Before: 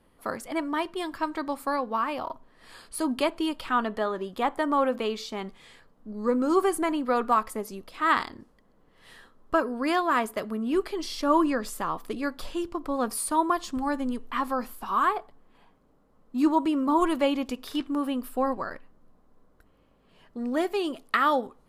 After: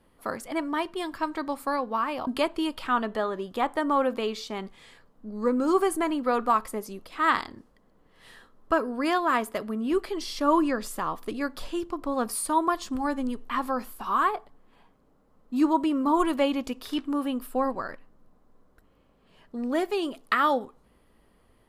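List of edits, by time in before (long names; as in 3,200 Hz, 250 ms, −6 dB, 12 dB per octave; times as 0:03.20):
0:02.27–0:03.09: remove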